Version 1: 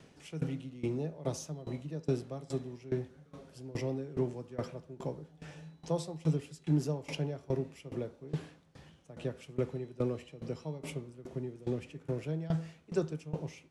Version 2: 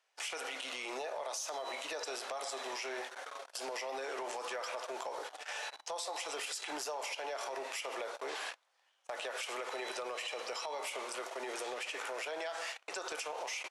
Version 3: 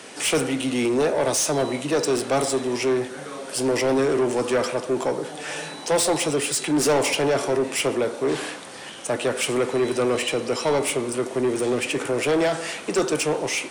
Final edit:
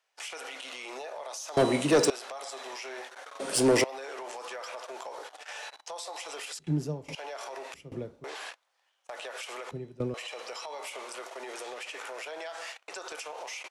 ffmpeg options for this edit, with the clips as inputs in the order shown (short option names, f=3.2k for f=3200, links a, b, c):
-filter_complex "[2:a]asplit=2[a][b];[0:a]asplit=3[c][d][e];[1:a]asplit=6[f][g][h][i][j][k];[f]atrim=end=1.572[l];[a]atrim=start=1.568:end=2.102[m];[g]atrim=start=2.098:end=3.402[n];[b]atrim=start=3.398:end=3.842[o];[h]atrim=start=3.838:end=6.592[p];[c]atrim=start=6.588:end=7.152[q];[i]atrim=start=7.148:end=7.742[r];[d]atrim=start=7.738:end=8.242[s];[j]atrim=start=8.238:end=9.712[t];[e]atrim=start=9.708:end=10.142[u];[k]atrim=start=10.138[v];[l][m]acrossfade=d=0.004:c1=hsin:c2=hsin[w];[w][n]acrossfade=d=0.004:c1=hsin:c2=hsin[x];[x][o]acrossfade=d=0.004:c1=hsin:c2=hsin[y];[y][p]acrossfade=d=0.004:c1=hsin:c2=hsin[z];[z][q]acrossfade=d=0.004:c1=hsin:c2=hsin[aa];[aa][r]acrossfade=d=0.004:c1=hsin:c2=hsin[ab];[ab][s]acrossfade=d=0.004:c1=hsin:c2=hsin[ac];[ac][t]acrossfade=d=0.004:c1=hsin:c2=hsin[ad];[ad][u]acrossfade=d=0.004:c1=hsin:c2=hsin[ae];[ae][v]acrossfade=d=0.004:c1=hsin:c2=hsin"